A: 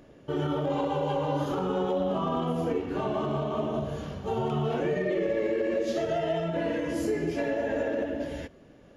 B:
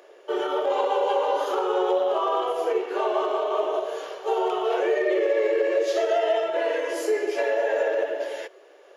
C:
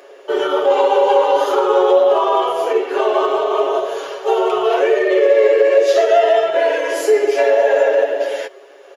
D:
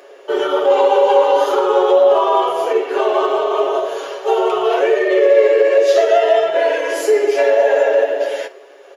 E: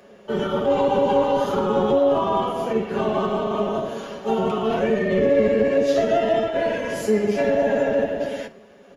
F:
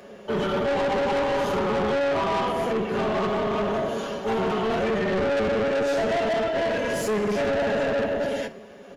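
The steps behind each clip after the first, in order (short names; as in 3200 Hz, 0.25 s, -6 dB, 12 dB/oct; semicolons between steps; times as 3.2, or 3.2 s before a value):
elliptic high-pass 380 Hz, stop band 40 dB; gain +7 dB
comb 7.3 ms; gain +7.5 dB
reverb RT60 0.65 s, pre-delay 11 ms, DRR 14 dB
octaver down 1 oct, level +4 dB; gain -7.5 dB
soft clip -25.5 dBFS, distortion -7 dB; gain +4 dB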